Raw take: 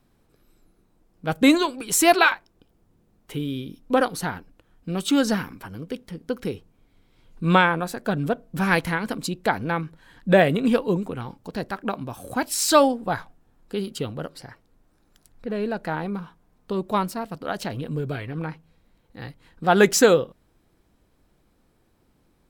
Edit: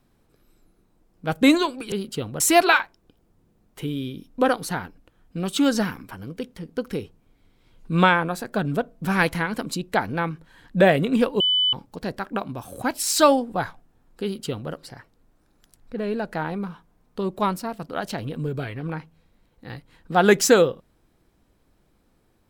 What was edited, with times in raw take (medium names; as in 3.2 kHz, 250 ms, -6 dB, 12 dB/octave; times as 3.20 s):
10.92–11.25 s: bleep 3 kHz -17 dBFS
13.75–14.23 s: copy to 1.92 s